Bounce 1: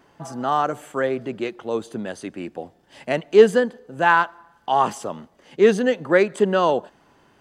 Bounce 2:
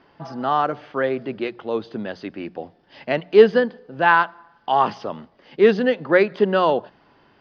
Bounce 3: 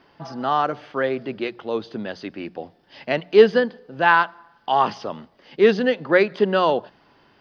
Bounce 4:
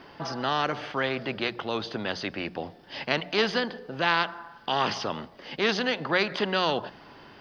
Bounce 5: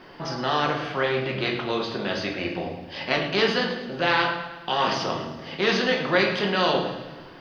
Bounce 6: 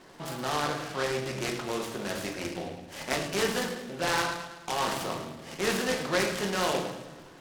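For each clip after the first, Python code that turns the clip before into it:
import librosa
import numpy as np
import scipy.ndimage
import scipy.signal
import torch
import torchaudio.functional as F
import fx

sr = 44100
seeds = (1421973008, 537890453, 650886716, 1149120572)

y1 = scipy.signal.sosfilt(scipy.signal.ellip(4, 1.0, 40, 5100.0, 'lowpass', fs=sr, output='sos'), x)
y1 = fx.hum_notches(y1, sr, base_hz=60, count=3)
y1 = y1 * librosa.db_to_amplitude(1.5)
y2 = fx.high_shelf(y1, sr, hz=4300.0, db=8.5)
y2 = y2 * librosa.db_to_amplitude(-1.0)
y3 = fx.spectral_comp(y2, sr, ratio=2.0)
y3 = y3 * librosa.db_to_amplitude(-5.5)
y4 = fx.echo_feedback(y3, sr, ms=107, feedback_pct=58, wet_db=-13)
y4 = fx.room_shoebox(y4, sr, seeds[0], volume_m3=170.0, walls='mixed', distance_m=0.98)
y5 = fx.noise_mod_delay(y4, sr, seeds[1], noise_hz=2500.0, depth_ms=0.058)
y5 = y5 * librosa.db_to_amplitude(-6.0)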